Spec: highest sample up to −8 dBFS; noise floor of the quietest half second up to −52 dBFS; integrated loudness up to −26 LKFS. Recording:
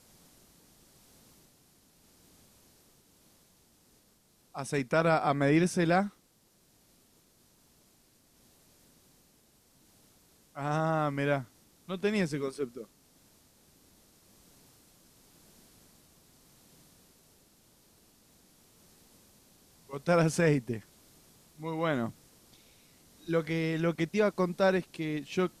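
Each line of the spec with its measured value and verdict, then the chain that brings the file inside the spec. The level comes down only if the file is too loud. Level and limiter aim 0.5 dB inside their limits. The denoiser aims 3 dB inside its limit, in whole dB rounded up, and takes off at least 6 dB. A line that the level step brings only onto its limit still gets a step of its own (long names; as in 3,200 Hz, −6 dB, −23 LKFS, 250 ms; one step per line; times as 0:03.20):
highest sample −14.5 dBFS: in spec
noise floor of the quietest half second −67 dBFS: in spec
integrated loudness −30.0 LKFS: in spec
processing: no processing needed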